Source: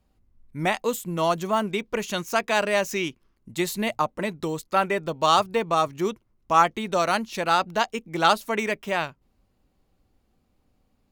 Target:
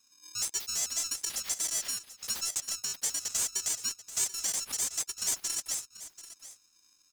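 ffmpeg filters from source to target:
-filter_complex "[0:a]afftfilt=real='real(if(lt(b,736),b+184*(1-2*mod(floor(b/184),2)),b),0)':imag='imag(if(lt(b,736),b+184*(1-2*mod(floor(b/184),2)),b),0)':win_size=2048:overlap=0.75,highpass=440,acompressor=threshold=0.0158:ratio=2,afreqshift=-310,asetrate=68796,aresample=44100,asplit=2[s0][s1];[s1]aecho=0:1:736:0.178[s2];[s0][s2]amix=inputs=2:normalize=0,aeval=exprs='val(0)*sgn(sin(2*PI*670*n/s))':c=same"

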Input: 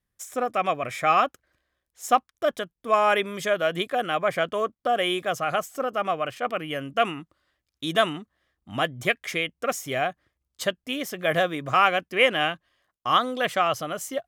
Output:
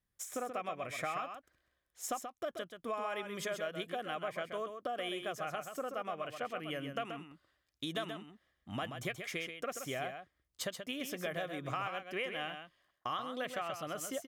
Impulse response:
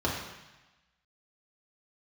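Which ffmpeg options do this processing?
-filter_complex "[0:a]acompressor=threshold=0.0251:ratio=6,asplit=2[s0][s1];[s1]aecho=0:1:131:0.422[s2];[s0][s2]amix=inputs=2:normalize=0,volume=0.596"

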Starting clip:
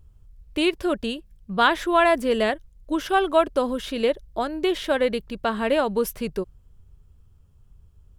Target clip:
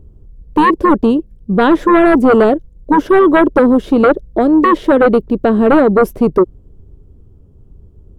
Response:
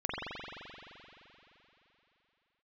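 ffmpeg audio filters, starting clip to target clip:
-filter_complex "[0:a]equalizer=f=330:w=1:g=13.5,tremolo=f=140:d=0.182,acrossover=split=850[s0][s1];[s0]aeval=exprs='0.75*sin(PI/2*3.16*val(0)/0.75)':c=same[s2];[s2][s1]amix=inputs=2:normalize=0,volume=0.75"

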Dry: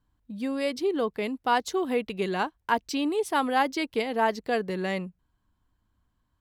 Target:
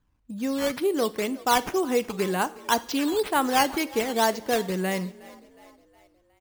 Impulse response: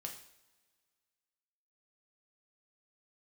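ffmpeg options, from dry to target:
-filter_complex "[0:a]acrusher=samples=8:mix=1:aa=0.000001:lfo=1:lforange=8:lforate=2,asplit=5[s0][s1][s2][s3][s4];[s1]adelay=364,afreqshift=41,volume=0.0891[s5];[s2]adelay=728,afreqshift=82,volume=0.0462[s6];[s3]adelay=1092,afreqshift=123,volume=0.024[s7];[s4]adelay=1456,afreqshift=164,volume=0.0126[s8];[s0][s5][s6][s7][s8]amix=inputs=5:normalize=0,asplit=2[s9][s10];[1:a]atrim=start_sample=2205[s11];[s10][s11]afir=irnorm=-1:irlink=0,volume=0.473[s12];[s9][s12]amix=inputs=2:normalize=0"

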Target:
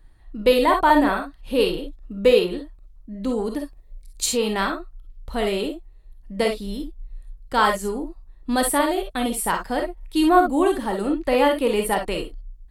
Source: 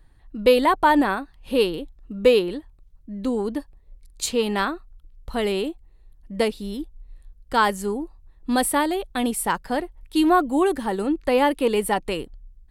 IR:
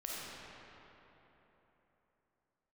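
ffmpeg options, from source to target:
-filter_complex "[0:a]asettb=1/sr,asplit=3[s0][s1][s2];[s0]atrim=end=3.464[s3];[s1]atrim=start=3.46:end=4.33,asetpts=PTS-STARTPTS,afade=t=in:d=0.004:c=qsin,afade=t=out:st=0.866:d=0.004:c=qsin,highshelf=f=5100:g=5[s4];[s2]atrim=start=4.326[s5];[s3][s4]acrossfade=d=0.004:c1=hsin:c2=qsin[s6];[s6][s5]acrossfade=d=0.004:c1=qsin:c2=hsin[s7];[1:a]atrim=start_sample=2205,atrim=end_sample=3087[s8];[s7][s8]afir=irnorm=-1:irlink=0,volume=1.68"

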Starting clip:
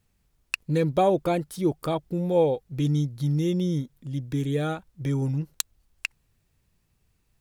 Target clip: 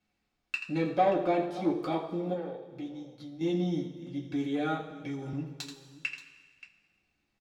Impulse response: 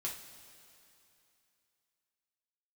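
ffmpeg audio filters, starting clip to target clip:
-filter_complex "[0:a]asettb=1/sr,asplit=3[s0][s1][s2];[s0]atrim=end=0.984[s3];[s1]atrim=start=0.98:end=1.68,asetpts=PTS-STARTPTS,afade=t=in:d=0.004:c=qsin,afade=t=out:st=0.696:d=0.004:c=qsin,highshelf=f=7900:g=-8.5[s4];[s2]atrim=start=1.676[s5];[s3][s4]acrossfade=d=0.004:c1=hsin:c2=qsin[s6];[s6][s5]acrossfade=d=0.004:c1=qsin:c2=hsin,aecho=1:1:83|579:0.237|0.106,asoftclip=type=tanh:threshold=0.15,asettb=1/sr,asplit=3[s7][s8][s9];[s7]atrim=end=2.334[s10];[s8]atrim=start=2.33:end=3.41,asetpts=PTS-STARTPTS,afade=t=in:d=0.004:c=qsin,afade=t=out:st=1.076:d=0.004:c=qsin,acompressor=threshold=0.02:ratio=6[s11];[s9]atrim=start=3.406[s12];[s10][s11]acrossfade=d=0.004:c1=hsin:c2=qsin[s13];[s13][s12]acrossfade=d=0.004:c1=qsin:c2=hsin[s14];[1:a]atrim=start_sample=2205,asetrate=88200,aresample=44100[s15];[s14][s15]afir=irnorm=-1:irlink=0,asettb=1/sr,asplit=3[s16][s17][s18];[s16]atrim=end=4.904[s19];[s17]atrim=start=4.9:end=5.33,asetpts=PTS-STARTPTS,afade=t=in:d=0.004:c=qsin,afade=t=out:st=0.426:d=0.004:c=qsin,acrossover=split=170|3000[s20][s21][s22];[s21]acompressor=threshold=0.0112:ratio=6[s23];[s20][s23][s22]amix=inputs=3:normalize=0[s24];[s18]atrim=start=5.326[s25];[s19][s24]acrossfade=d=0.004:c1=hsin:c2=qsin[s26];[s26][s25]acrossfade=d=0.004:c1=qsin:c2=hsin,acrossover=split=200 5700:gain=0.2 1 0.1[s27][s28][s29];[s27][s28][s29]amix=inputs=3:normalize=0,volume=1.68"

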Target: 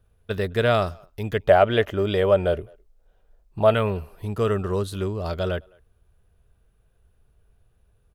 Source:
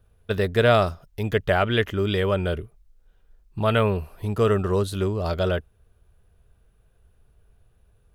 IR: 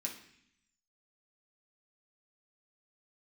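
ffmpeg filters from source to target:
-filter_complex "[0:a]asettb=1/sr,asplit=3[s0][s1][s2];[s0]atrim=end=1.444[s3];[s1]atrim=start=1.44:end=3.74,asetpts=PTS-STARTPTS,afade=t=in:d=0.004:c=qsin,afade=t=out:st=2.296:d=0.004:c=qsin,equalizer=f=630:w=1.4:g=11[s4];[s2]atrim=start=3.736[s5];[s3][s4]acrossfade=d=0.004:c1=hsin:c2=qsin[s6];[s6][s5]acrossfade=d=0.004:c1=qsin:c2=hsin,asplit=2[s7][s8];[s8]adelay=210,highpass=300,lowpass=3400,asoftclip=type=hard:threshold=0.237,volume=0.0398[s9];[s7][s9]amix=inputs=2:normalize=0,volume=0.75"

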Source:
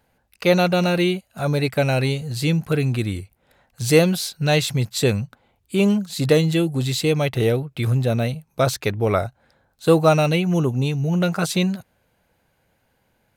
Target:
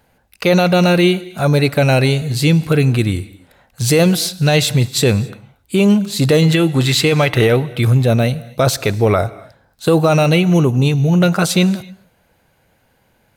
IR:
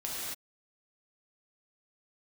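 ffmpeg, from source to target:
-filter_complex "[0:a]asettb=1/sr,asplit=3[s0][s1][s2];[s0]atrim=end=6.424[s3];[s1]atrim=start=6.42:end=7.68,asetpts=PTS-STARTPTS,afade=t=in:d=0.004:c=qsin,afade=t=out:st=1.256:d=0.004:c=qsin,equalizer=f=1600:w=0.69:g=8.5[s4];[s2]atrim=start=7.676[s5];[s3][s4]acrossfade=d=0.004:c1=hsin:c2=qsin[s6];[s6][s5]acrossfade=d=0.004:c1=qsin:c2=hsin,alimiter=limit=0.251:level=0:latency=1:release=23,asplit=2[s7][s8];[1:a]atrim=start_sample=2205[s9];[s8][s9]afir=irnorm=-1:irlink=0,volume=0.0891[s10];[s7][s10]amix=inputs=2:normalize=0,volume=2.24"

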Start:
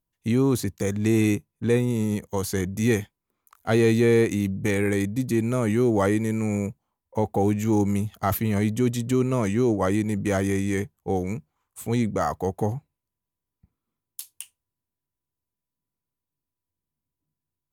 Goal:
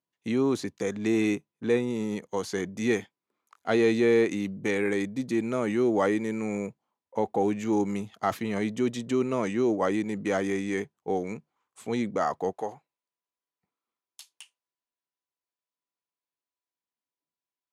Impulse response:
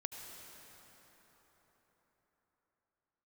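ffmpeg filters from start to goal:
-af "asetnsamples=n=441:p=0,asendcmd='12.53 highpass f 520',highpass=240,lowpass=5700,volume=0.841"

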